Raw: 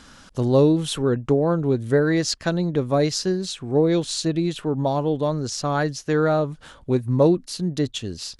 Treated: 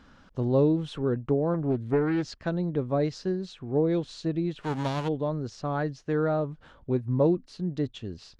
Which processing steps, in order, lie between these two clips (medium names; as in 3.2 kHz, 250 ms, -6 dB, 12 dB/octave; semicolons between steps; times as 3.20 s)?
4.60–5.07 s: formants flattened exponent 0.3; tape spacing loss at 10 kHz 25 dB; 1.54–2.31 s: loudspeaker Doppler distortion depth 0.42 ms; trim -5 dB